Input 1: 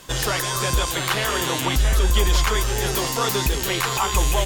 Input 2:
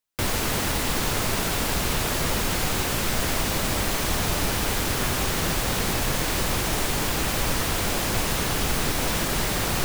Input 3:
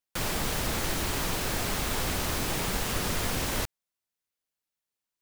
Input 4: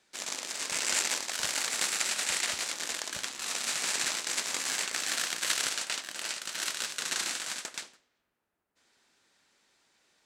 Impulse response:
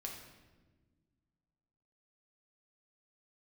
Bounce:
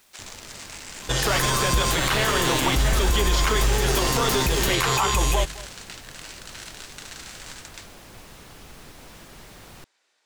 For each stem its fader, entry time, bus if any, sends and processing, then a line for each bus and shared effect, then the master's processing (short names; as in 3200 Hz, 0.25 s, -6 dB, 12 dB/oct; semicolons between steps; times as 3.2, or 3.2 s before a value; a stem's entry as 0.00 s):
+1.0 dB, 1.00 s, send -6.5 dB, echo send -20.5 dB, dry
-20.0 dB, 0.00 s, no send, no echo send, requantised 6-bit, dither triangular
+2.5 dB, 1.10 s, no send, no echo send, dry
0.0 dB, 0.00 s, no send, no echo send, HPF 430 Hz 12 dB/oct; compressor, threshold -36 dBFS, peak gain reduction 12 dB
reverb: on, RT60 1.3 s, pre-delay 5 ms
echo: echo 0.211 s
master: high shelf 11000 Hz -6.5 dB; limiter -11.5 dBFS, peak gain reduction 6 dB